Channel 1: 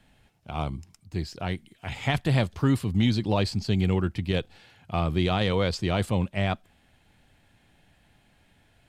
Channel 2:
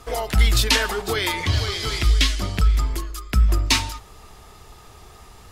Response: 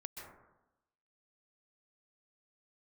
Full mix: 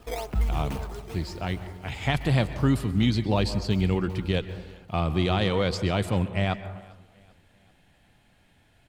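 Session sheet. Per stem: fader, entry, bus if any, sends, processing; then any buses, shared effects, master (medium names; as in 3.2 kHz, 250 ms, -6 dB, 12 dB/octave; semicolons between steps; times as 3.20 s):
-2.5 dB, 0.00 s, send -3.5 dB, echo send -23 dB, none
-3.5 dB, 0.00 s, send -20.5 dB, echo send -21 dB, median filter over 25 samples; decimation with a swept rate 9×, swing 160% 2.1 Hz; auto duck -23 dB, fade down 1.80 s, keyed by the first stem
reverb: on, RT60 0.95 s, pre-delay 117 ms
echo: feedback delay 392 ms, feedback 46%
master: none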